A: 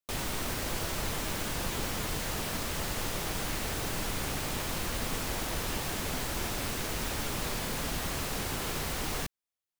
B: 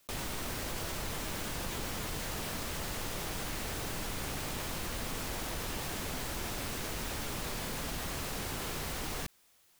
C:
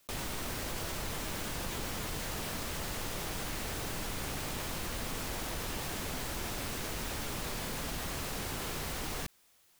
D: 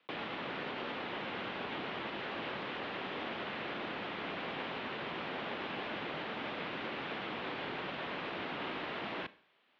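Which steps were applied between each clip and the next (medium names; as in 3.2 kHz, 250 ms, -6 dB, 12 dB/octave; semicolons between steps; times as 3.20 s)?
level flattener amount 50%; trim -5.5 dB
no audible change
mistuned SSB -100 Hz 300–3500 Hz; Schroeder reverb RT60 0.5 s, combs from 28 ms, DRR 17 dB; trim +2 dB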